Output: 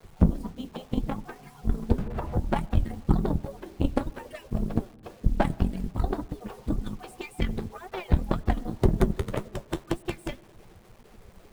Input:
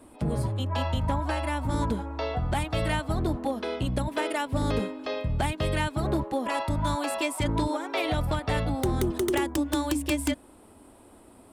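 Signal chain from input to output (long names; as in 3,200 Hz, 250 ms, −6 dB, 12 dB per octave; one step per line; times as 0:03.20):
harmonic-percussive split with one part muted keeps percussive
spectral tilt −4 dB per octave
harmonic generator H 2 −19 dB, 4 −10 dB, 6 −26 dB, 7 −22 dB, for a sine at −8.5 dBFS
in parallel at −2 dB: downward compressor 16 to 1, threshold −39 dBFS, peak gain reduction 26.5 dB
on the sum: flanger 1.9 Hz, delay 6.4 ms, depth 6.6 ms, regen −61%
bit-depth reduction 10 bits, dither none
on a send at −22.5 dB: convolution reverb RT60 1.7 s, pre-delay 50 ms
0:01.98–0:02.50: on the sum: multiband upward and downward compressor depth 100%
level +4 dB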